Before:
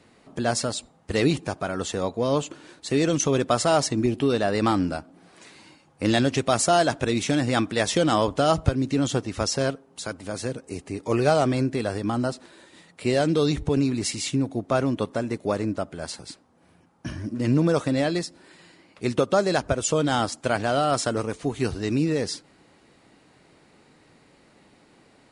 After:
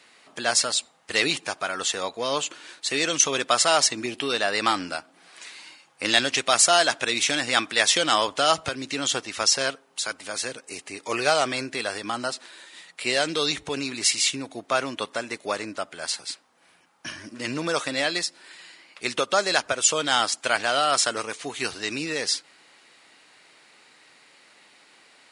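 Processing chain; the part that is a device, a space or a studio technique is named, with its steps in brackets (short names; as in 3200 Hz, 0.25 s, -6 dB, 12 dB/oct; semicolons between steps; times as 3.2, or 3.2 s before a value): filter by subtraction (in parallel: LPF 2500 Hz 12 dB/oct + phase invert); on the sum: gain +6.5 dB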